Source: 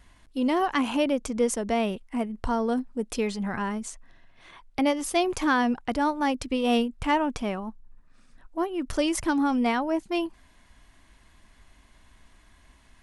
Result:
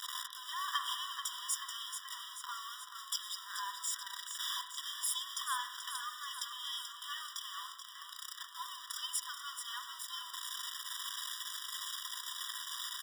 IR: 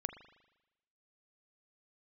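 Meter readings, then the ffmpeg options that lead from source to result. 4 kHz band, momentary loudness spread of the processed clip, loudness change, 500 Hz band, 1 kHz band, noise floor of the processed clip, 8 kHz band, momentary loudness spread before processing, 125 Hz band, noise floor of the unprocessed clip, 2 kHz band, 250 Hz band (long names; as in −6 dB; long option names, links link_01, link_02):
+0.5 dB, 7 LU, −12.5 dB, below −40 dB, −13.5 dB, −51 dBFS, 0.0 dB, 8 LU, below −40 dB, −58 dBFS, −11.5 dB, below −40 dB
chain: -filter_complex "[0:a]aeval=exprs='val(0)+0.5*0.0501*sgn(val(0))':channel_layout=same,highpass=frequency=71:width=0.5412,highpass=frequency=71:width=1.3066,asubboost=boost=10.5:cutoff=220,acrossover=split=100|600|1900[link_01][link_02][link_03][link_04];[link_02]alimiter=limit=-16.5dB:level=0:latency=1[link_05];[link_01][link_05][link_03][link_04]amix=inputs=4:normalize=0,equalizer=frequency=100:width_type=o:width=0.67:gain=-6,equalizer=frequency=630:width_type=o:width=0.67:gain=5,equalizer=frequency=1600:width_type=o:width=0.67:gain=-8,equalizer=frequency=4000:width_type=o:width=0.67:gain=5,acompressor=threshold=-21dB:ratio=6,flanger=delay=2.2:depth=2.3:regen=75:speed=1.3:shape=sinusoidal,asplit=9[link_06][link_07][link_08][link_09][link_10][link_11][link_12][link_13][link_14];[link_07]adelay=433,afreqshift=-30,volume=-8dB[link_15];[link_08]adelay=866,afreqshift=-60,volume=-12.2dB[link_16];[link_09]adelay=1299,afreqshift=-90,volume=-16.3dB[link_17];[link_10]adelay=1732,afreqshift=-120,volume=-20.5dB[link_18];[link_11]adelay=2165,afreqshift=-150,volume=-24.6dB[link_19];[link_12]adelay=2598,afreqshift=-180,volume=-28.8dB[link_20];[link_13]adelay=3031,afreqshift=-210,volume=-32.9dB[link_21];[link_14]adelay=3464,afreqshift=-240,volume=-37.1dB[link_22];[link_06][link_15][link_16][link_17][link_18][link_19][link_20][link_21][link_22]amix=inputs=9:normalize=0[link_23];[1:a]atrim=start_sample=2205[link_24];[link_23][link_24]afir=irnorm=-1:irlink=0,afftfilt=real='re*eq(mod(floor(b*sr/1024/970),2),1)':imag='im*eq(mod(floor(b*sr/1024/970),2),1)':win_size=1024:overlap=0.75,volume=3dB"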